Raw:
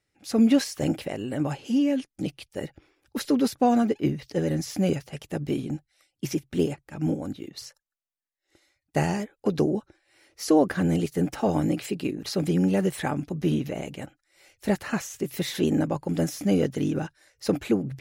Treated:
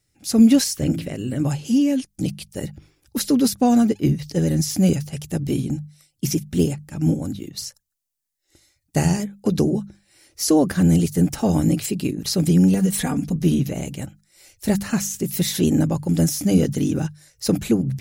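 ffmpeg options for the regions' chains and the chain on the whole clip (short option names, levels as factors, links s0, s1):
-filter_complex "[0:a]asettb=1/sr,asplit=3[s0][s1][s2];[s0]atrim=end=0.764[s3];[s1]atrim=start=0.76:end=1.43,asetpts=PTS-STARTPTS,afade=t=in:d=0.004:c=qsin,afade=t=out:st=0.666:d=0.004:c=qsin,equalizer=f=830:t=o:w=0.57:g=-8,acrossover=split=3600[s4][s5];[s5]acompressor=threshold=0.002:ratio=4:attack=1:release=60[s6];[s4][s6]amix=inputs=2:normalize=0,bandreject=f=55.34:t=h:w=4,bandreject=f=110.68:t=h:w=4,bandreject=f=166.02:t=h:w=4,bandreject=f=221.36:t=h:w=4,bandreject=f=276.7:t=h:w=4,bandreject=f=332.04:t=h:w=4,bandreject=f=387.38:t=h:w=4[s7];[s2]atrim=start=1.426[s8];[s3][s7]acrossfade=d=0.004:c1=hsin:c2=qsin[s9];[s9][s8]acrossfade=d=0.004:c1=qsin:c2=hsin,asettb=1/sr,asplit=3[s10][s11][s12];[s10]atrim=end=12.744[s13];[s11]atrim=start=12.74:end=13.36,asetpts=PTS-STARTPTS,afade=t=in:d=0.004:c=qsin,afade=t=out:st=0.616:d=0.004:c=qsin,aecho=1:1:4.2:0.99,atrim=end_sample=27342,acompressor=threshold=0.0708:ratio=2.5:attack=3.2:release=140:knee=1:detection=peak[s14];[s12]atrim=start=13.356[s15];[s13][s14]acrossfade=d=0.004:c1=hsin:c2=qsin[s16];[s16][s15]acrossfade=d=0.004:c1=qsin:c2=hsin,bass=f=250:g=12,treble=f=4000:g=13,bandreject=f=50:t=h:w=6,bandreject=f=100:t=h:w=6,bandreject=f=150:t=h:w=6,bandreject=f=200:t=h:w=6"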